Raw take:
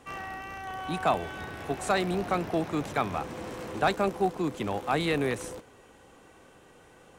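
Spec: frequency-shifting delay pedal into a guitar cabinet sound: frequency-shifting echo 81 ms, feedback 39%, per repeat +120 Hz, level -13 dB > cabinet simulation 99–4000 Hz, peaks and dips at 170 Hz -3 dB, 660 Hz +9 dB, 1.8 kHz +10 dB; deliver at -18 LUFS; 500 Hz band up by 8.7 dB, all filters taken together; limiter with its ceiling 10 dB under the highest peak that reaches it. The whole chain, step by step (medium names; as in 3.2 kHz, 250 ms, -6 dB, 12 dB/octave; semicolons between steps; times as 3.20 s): peaking EQ 500 Hz +6 dB; peak limiter -20.5 dBFS; frequency-shifting echo 81 ms, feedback 39%, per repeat +120 Hz, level -13 dB; cabinet simulation 99–4000 Hz, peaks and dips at 170 Hz -3 dB, 660 Hz +9 dB, 1.8 kHz +10 dB; trim +10.5 dB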